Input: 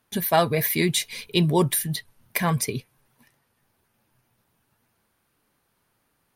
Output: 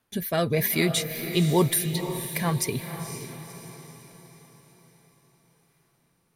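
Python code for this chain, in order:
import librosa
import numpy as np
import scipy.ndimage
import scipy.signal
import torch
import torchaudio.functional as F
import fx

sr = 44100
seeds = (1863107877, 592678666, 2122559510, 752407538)

y = fx.rotary(x, sr, hz=1.0)
y = fx.echo_diffused(y, sr, ms=507, feedback_pct=48, wet_db=-9)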